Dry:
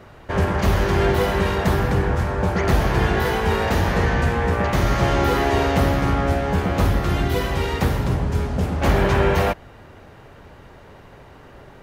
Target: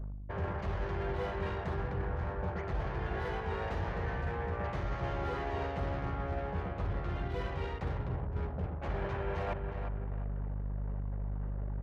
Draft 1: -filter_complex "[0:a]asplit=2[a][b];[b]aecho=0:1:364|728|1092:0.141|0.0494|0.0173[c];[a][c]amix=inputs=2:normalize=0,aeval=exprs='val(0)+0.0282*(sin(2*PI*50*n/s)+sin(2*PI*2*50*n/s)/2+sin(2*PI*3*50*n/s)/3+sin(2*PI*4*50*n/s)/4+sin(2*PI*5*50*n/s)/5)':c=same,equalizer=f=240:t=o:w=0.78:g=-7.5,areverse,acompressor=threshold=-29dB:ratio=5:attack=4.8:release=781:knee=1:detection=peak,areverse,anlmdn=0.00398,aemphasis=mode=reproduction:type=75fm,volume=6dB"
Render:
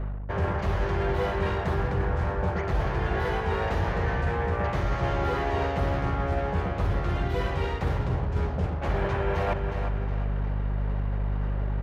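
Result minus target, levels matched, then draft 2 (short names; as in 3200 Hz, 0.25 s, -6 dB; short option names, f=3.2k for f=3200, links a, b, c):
compressor: peak gain reduction -9 dB
-filter_complex "[0:a]asplit=2[a][b];[b]aecho=0:1:364|728|1092:0.141|0.0494|0.0173[c];[a][c]amix=inputs=2:normalize=0,aeval=exprs='val(0)+0.0282*(sin(2*PI*50*n/s)+sin(2*PI*2*50*n/s)/2+sin(2*PI*3*50*n/s)/3+sin(2*PI*4*50*n/s)/4+sin(2*PI*5*50*n/s)/5)':c=same,equalizer=f=240:t=o:w=0.78:g=-7.5,areverse,acompressor=threshold=-40dB:ratio=5:attack=4.8:release=781:knee=1:detection=peak,areverse,anlmdn=0.00398,aemphasis=mode=reproduction:type=75fm,volume=6dB"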